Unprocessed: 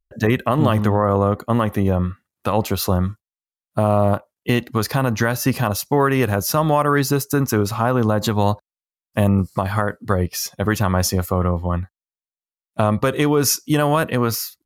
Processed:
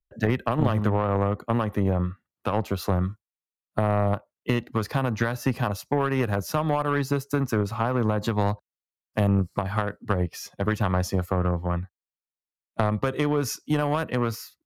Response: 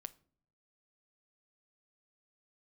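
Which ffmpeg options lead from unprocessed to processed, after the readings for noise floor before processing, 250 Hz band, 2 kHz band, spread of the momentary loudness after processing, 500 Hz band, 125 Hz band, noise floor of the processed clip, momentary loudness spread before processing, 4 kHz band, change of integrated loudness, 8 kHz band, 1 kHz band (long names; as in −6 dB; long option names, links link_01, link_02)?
below −85 dBFS, −6.5 dB, −6.5 dB, 6 LU, −7.0 dB, −5.5 dB, below −85 dBFS, 6 LU, −10.5 dB, −6.5 dB, −14.0 dB, −6.5 dB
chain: -filter_complex "[0:a]highshelf=frequency=4400:gain=-10,aeval=exprs='1.26*(cos(1*acos(clip(val(0)/1.26,-1,1)))-cos(1*PI/2))+0.0891*(cos(7*acos(clip(val(0)/1.26,-1,1)))-cos(7*PI/2))':channel_layout=same,acrossover=split=130[link_01][link_02];[link_02]acompressor=threshold=-22dB:ratio=2.5[link_03];[link_01][link_03]amix=inputs=2:normalize=0"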